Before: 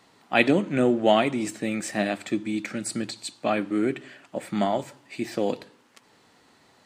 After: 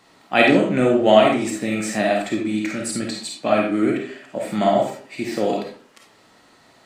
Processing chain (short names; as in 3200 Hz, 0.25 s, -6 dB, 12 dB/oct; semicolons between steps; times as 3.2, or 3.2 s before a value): digital reverb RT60 0.45 s, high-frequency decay 0.6×, pre-delay 10 ms, DRR -1 dB; gain +2.5 dB